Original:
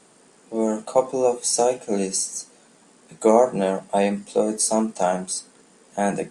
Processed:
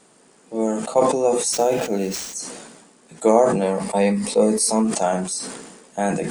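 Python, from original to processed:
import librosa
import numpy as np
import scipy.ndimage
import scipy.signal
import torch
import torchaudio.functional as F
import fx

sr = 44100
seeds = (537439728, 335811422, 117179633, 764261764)

y = fx.median_filter(x, sr, points=5, at=(1.52, 2.33), fade=0.02)
y = fx.ripple_eq(y, sr, per_octave=0.9, db=7, at=(3.62, 4.85))
y = fx.sustainer(y, sr, db_per_s=45.0)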